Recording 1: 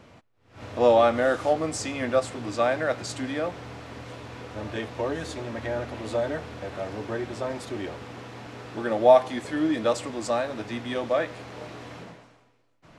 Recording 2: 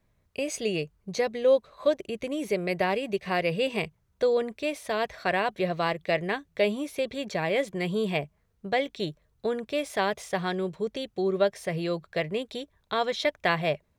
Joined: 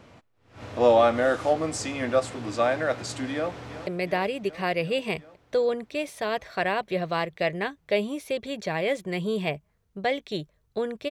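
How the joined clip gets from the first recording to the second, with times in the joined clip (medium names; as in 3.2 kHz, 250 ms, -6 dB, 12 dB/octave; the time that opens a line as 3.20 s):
recording 1
3.32–3.87 s: echo throw 370 ms, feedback 75%, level -13 dB
3.87 s: go over to recording 2 from 2.55 s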